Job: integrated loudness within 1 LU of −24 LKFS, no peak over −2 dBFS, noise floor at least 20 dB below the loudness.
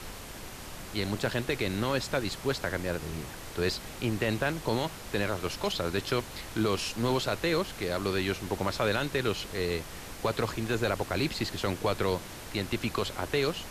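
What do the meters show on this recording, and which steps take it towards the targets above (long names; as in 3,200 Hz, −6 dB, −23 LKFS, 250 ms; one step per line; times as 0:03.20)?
number of dropouts 1; longest dropout 1.2 ms; background noise floor −43 dBFS; target noise floor −51 dBFS; integrated loudness −31.0 LKFS; sample peak −16.0 dBFS; target loudness −24.0 LKFS
→ repair the gap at 0:11.14, 1.2 ms
noise reduction from a noise print 8 dB
level +7 dB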